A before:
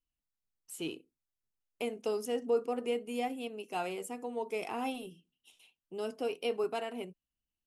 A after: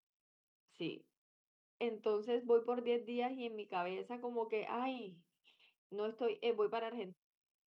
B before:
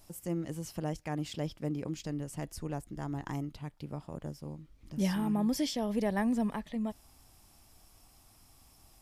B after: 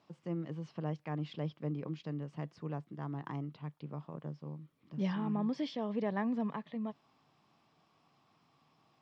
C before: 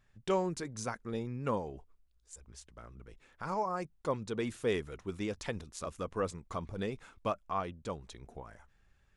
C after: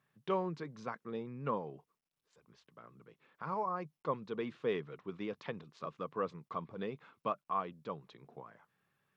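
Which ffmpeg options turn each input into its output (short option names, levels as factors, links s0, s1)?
-af "highpass=f=140:w=0.5412,highpass=f=140:w=1.3066,equalizer=f=150:t=q:w=4:g=7,equalizer=f=450:t=q:w=4:g=3,equalizer=f=1100:t=q:w=4:g=7,lowpass=f=4000:w=0.5412,lowpass=f=4000:w=1.3066,volume=0.562" -ar 44100 -c:a sbc -b:a 192k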